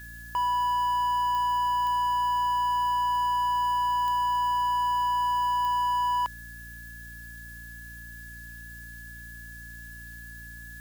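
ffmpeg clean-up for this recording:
-af "adeclick=t=4,bandreject=f=57.6:t=h:w=4,bandreject=f=115.2:t=h:w=4,bandreject=f=172.8:t=h:w=4,bandreject=f=230.4:t=h:w=4,bandreject=f=288:t=h:w=4,bandreject=f=1700:w=30,afftdn=nr=30:nf=-43"

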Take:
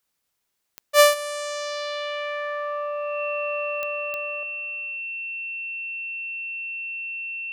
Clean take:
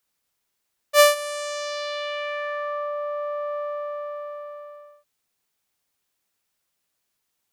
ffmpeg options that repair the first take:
-af "adeclick=t=4,bandreject=f=2700:w=30,asetnsamples=n=441:p=0,asendcmd='4.43 volume volume 9dB',volume=1"

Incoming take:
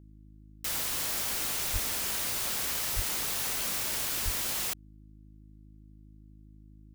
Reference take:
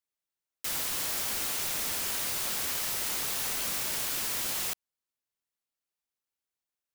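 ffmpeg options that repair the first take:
-filter_complex "[0:a]bandreject=f=52.4:t=h:w=4,bandreject=f=104.8:t=h:w=4,bandreject=f=157.2:t=h:w=4,bandreject=f=209.6:t=h:w=4,bandreject=f=262:t=h:w=4,bandreject=f=314.4:t=h:w=4,asplit=3[s0][s1][s2];[s0]afade=t=out:st=1.72:d=0.02[s3];[s1]highpass=f=140:w=0.5412,highpass=f=140:w=1.3066,afade=t=in:st=1.72:d=0.02,afade=t=out:st=1.84:d=0.02[s4];[s2]afade=t=in:st=1.84:d=0.02[s5];[s3][s4][s5]amix=inputs=3:normalize=0,asplit=3[s6][s7][s8];[s6]afade=t=out:st=2.95:d=0.02[s9];[s7]highpass=f=140:w=0.5412,highpass=f=140:w=1.3066,afade=t=in:st=2.95:d=0.02,afade=t=out:st=3.07:d=0.02[s10];[s8]afade=t=in:st=3.07:d=0.02[s11];[s9][s10][s11]amix=inputs=3:normalize=0,asplit=3[s12][s13][s14];[s12]afade=t=out:st=4.24:d=0.02[s15];[s13]highpass=f=140:w=0.5412,highpass=f=140:w=1.3066,afade=t=in:st=4.24:d=0.02,afade=t=out:st=4.36:d=0.02[s16];[s14]afade=t=in:st=4.36:d=0.02[s17];[s15][s16][s17]amix=inputs=3:normalize=0"

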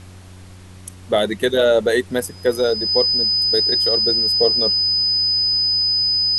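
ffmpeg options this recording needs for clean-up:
-af "bandreject=f=92.1:t=h:w=4,bandreject=f=184.2:t=h:w=4,bandreject=f=276.3:t=h:w=4,bandreject=f=368.4:t=h:w=4,bandreject=f=5000:w=30,agate=range=0.0891:threshold=0.0251"

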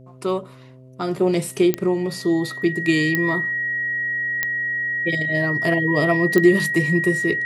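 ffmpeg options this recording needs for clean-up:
-af "adeclick=t=4,bandreject=f=129:t=h:w=4,bandreject=f=258:t=h:w=4,bandreject=f=387:t=h:w=4,bandreject=f=516:t=h:w=4,bandreject=f=645:t=h:w=4,bandreject=f=1900:w=30"

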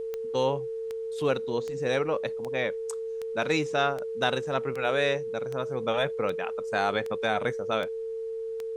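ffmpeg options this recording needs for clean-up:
-af "adeclick=t=4,bandreject=f=450:w=30,agate=range=0.0891:threshold=0.0501"

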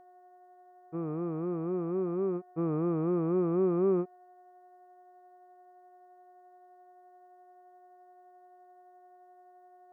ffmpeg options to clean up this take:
-af "bandreject=f=365.8:t=h:w=4,bandreject=f=731.6:t=h:w=4,bandreject=f=1097.4:t=h:w=4,bandreject=f=1463.2:t=h:w=4,bandreject=f=1829:t=h:w=4,bandreject=f=720:w=30"

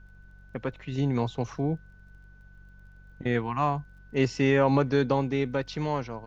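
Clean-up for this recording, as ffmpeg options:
-af "adeclick=t=4,bandreject=f=47.4:t=h:w=4,bandreject=f=94.8:t=h:w=4,bandreject=f=142.2:t=h:w=4,bandreject=f=189.6:t=h:w=4,bandreject=f=1500:w=30,agate=range=0.0891:threshold=0.00631"

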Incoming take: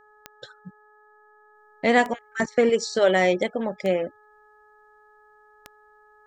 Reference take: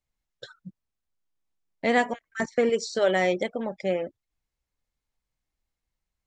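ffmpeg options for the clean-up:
-af "adeclick=t=4,bandreject=f=423.3:t=h:w=4,bandreject=f=846.6:t=h:w=4,bandreject=f=1269.9:t=h:w=4,bandreject=f=1693.2:t=h:w=4,asetnsamples=n=441:p=0,asendcmd='1.55 volume volume -3.5dB',volume=1"

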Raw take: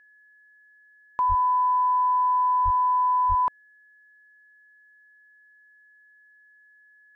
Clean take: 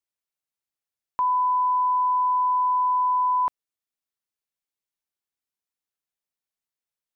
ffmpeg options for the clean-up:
-filter_complex "[0:a]bandreject=f=1700:w=30,asplit=3[s0][s1][s2];[s0]afade=t=out:st=1.28:d=0.02[s3];[s1]highpass=f=140:w=0.5412,highpass=f=140:w=1.3066,afade=t=in:st=1.28:d=0.02,afade=t=out:st=1.4:d=0.02[s4];[s2]afade=t=in:st=1.4:d=0.02[s5];[s3][s4][s5]amix=inputs=3:normalize=0,asplit=3[s6][s7][s8];[s6]afade=t=out:st=2.64:d=0.02[s9];[s7]highpass=f=140:w=0.5412,highpass=f=140:w=1.3066,afade=t=in:st=2.64:d=0.02,afade=t=out:st=2.76:d=0.02[s10];[s8]afade=t=in:st=2.76:d=0.02[s11];[s9][s10][s11]amix=inputs=3:normalize=0,asplit=3[s12][s13][s14];[s12]afade=t=out:st=3.28:d=0.02[s15];[s13]highpass=f=140:w=0.5412,highpass=f=140:w=1.3066,afade=t=in:st=3.28:d=0.02,afade=t=out:st=3.4:d=0.02[s16];[s14]afade=t=in:st=3.4:d=0.02[s17];[s15][s16][s17]amix=inputs=3:normalize=0,agate=range=0.0891:threshold=0.00355"

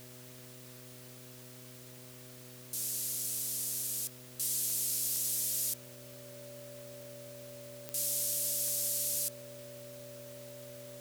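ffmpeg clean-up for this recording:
-af "adeclick=t=4,bandreject=f=125.2:t=h:w=4,bandreject=f=250.4:t=h:w=4,bandreject=f=375.6:t=h:w=4,bandreject=f=500.8:t=h:w=4,bandreject=f=626:t=h:w=4,bandreject=f=580:w=30,afwtdn=0.002"

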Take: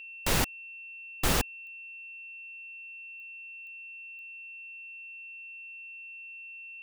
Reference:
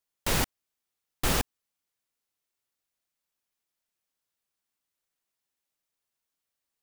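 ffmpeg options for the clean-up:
-af "adeclick=t=4,bandreject=f=2700:w=30"

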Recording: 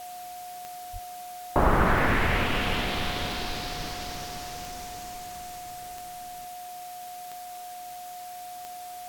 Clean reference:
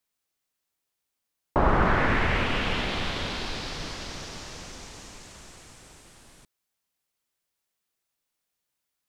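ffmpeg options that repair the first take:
-filter_complex "[0:a]adeclick=t=4,bandreject=f=720:w=30,asplit=3[s0][s1][s2];[s0]afade=t=out:st=0.92:d=0.02[s3];[s1]highpass=f=140:w=0.5412,highpass=f=140:w=1.3066,afade=t=in:st=0.92:d=0.02,afade=t=out:st=1.04:d=0.02[s4];[s2]afade=t=in:st=1.04:d=0.02[s5];[s3][s4][s5]amix=inputs=3:normalize=0,asplit=3[s6][s7][s8];[s6]afade=t=out:st=2.65:d=0.02[s9];[s7]highpass=f=140:w=0.5412,highpass=f=140:w=1.3066,afade=t=in:st=2.65:d=0.02,afade=t=out:st=2.77:d=0.02[s10];[s8]afade=t=in:st=2.77:d=0.02[s11];[s9][s10][s11]amix=inputs=3:normalize=0,afwtdn=0.0045"

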